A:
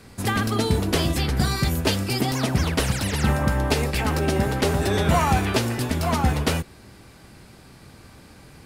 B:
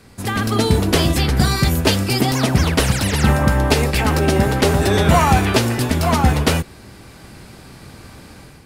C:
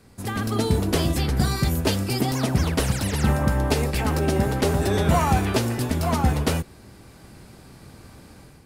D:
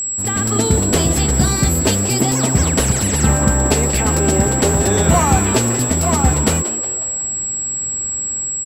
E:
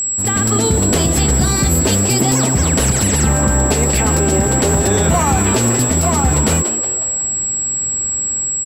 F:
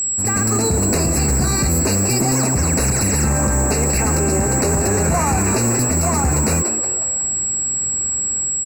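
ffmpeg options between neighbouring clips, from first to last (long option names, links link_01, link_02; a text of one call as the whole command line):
ffmpeg -i in.wav -af "dynaudnorm=framelen=290:gausssize=3:maxgain=7.5dB" out.wav
ffmpeg -i in.wav -af "equalizer=frequency=2600:width_type=o:width=2.5:gain=-4,volume=-5.5dB" out.wav
ffmpeg -i in.wav -filter_complex "[0:a]asplit=6[link_01][link_02][link_03][link_04][link_05][link_06];[link_02]adelay=182,afreqshift=140,volume=-13dB[link_07];[link_03]adelay=364,afreqshift=280,volume=-19.4dB[link_08];[link_04]adelay=546,afreqshift=420,volume=-25.8dB[link_09];[link_05]adelay=728,afreqshift=560,volume=-32.1dB[link_10];[link_06]adelay=910,afreqshift=700,volume=-38.5dB[link_11];[link_01][link_07][link_08][link_09][link_10][link_11]amix=inputs=6:normalize=0,aeval=exprs='val(0)+0.0562*sin(2*PI*7700*n/s)':channel_layout=same,volume=5.5dB" out.wav
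ffmpeg -i in.wav -af "alimiter=level_in=7dB:limit=-1dB:release=50:level=0:latency=1,volume=-4dB" out.wav
ffmpeg -i in.wav -af "asoftclip=type=hard:threshold=-11.5dB,asuperstop=centerf=3300:order=20:qfactor=3,volume=-1.5dB" out.wav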